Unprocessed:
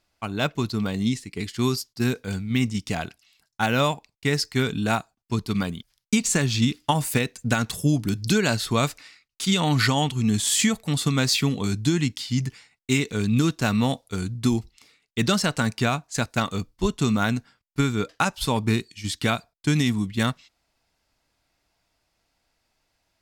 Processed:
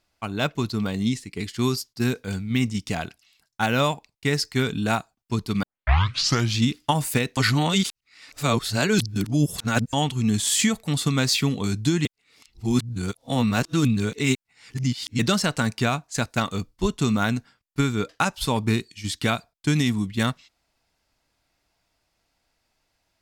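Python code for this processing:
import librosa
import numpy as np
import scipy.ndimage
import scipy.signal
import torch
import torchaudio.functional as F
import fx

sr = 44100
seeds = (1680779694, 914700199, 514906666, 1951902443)

y = fx.edit(x, sr, fx.tape_start(start_s=5.63, length_s=0.93),
    fx.reverse_span(start_s=7.37, length_s=2.56),
    fx.reverse_span(start_s=12.05, length_s=3.14), tone=tone)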